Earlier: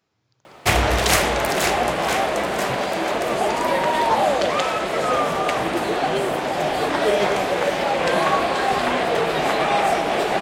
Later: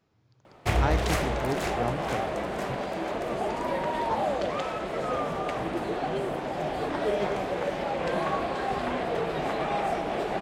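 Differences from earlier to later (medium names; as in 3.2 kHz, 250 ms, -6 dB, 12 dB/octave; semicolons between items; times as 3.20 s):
background -10.0 dB; master: add tilt EQ -2 dB/octave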